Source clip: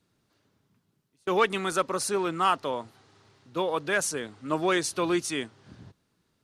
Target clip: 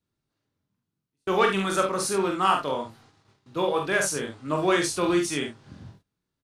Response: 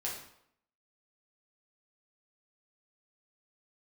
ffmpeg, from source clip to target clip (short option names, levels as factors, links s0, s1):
-filter_complex "[0:a]asplit=2[s0][s1];[s1]adelay=21,volume=0.398[s2];[s0][s2]amix=inputs=2:normalize=0,asplit=2[s3][s4];[s4]aecho=0:1:46|72:0.596|0.316[s5];[s3][s5]amix=inputs=2:normalize=0,agate=range=0.2:threshold=0.00158:ratio=16:detection=peak,lowshelf=f=110:g=7.5"